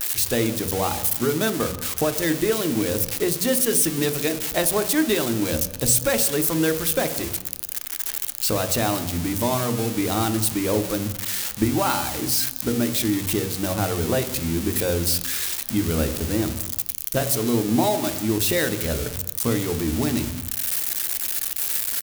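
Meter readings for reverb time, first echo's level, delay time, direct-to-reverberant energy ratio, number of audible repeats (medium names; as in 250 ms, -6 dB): 1.0 s, -23.0 dB, 200 ms, 8.5 dB, 1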